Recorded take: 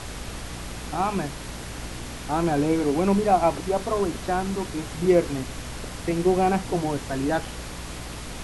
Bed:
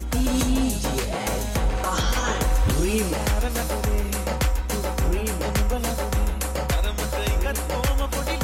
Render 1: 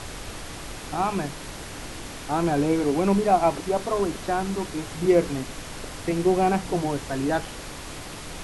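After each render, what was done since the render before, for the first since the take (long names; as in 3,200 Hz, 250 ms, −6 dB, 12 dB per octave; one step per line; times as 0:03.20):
hum removal 60 Hz, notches 4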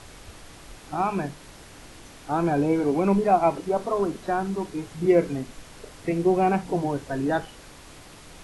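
noise reduction from a noise print 9 dB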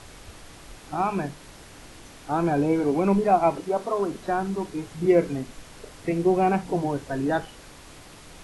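0:03.64–0:04.11: low-shelf EQ 130 Hz −10.5 dB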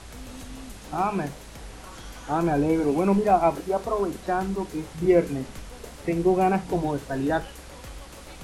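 mix in bed −20 dB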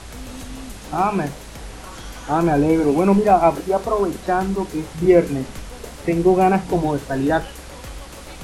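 level +6 dB
brickwall limiter −3 dBFS, peak gain reduction 1.5 dB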